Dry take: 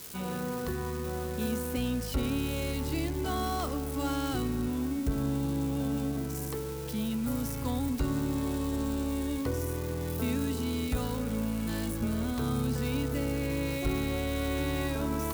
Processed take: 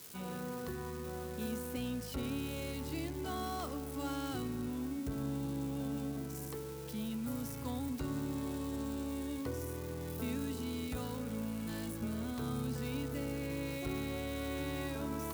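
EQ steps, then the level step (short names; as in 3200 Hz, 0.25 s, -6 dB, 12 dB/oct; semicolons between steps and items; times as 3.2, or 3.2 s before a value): HPF 77 Hz; -7.0 dB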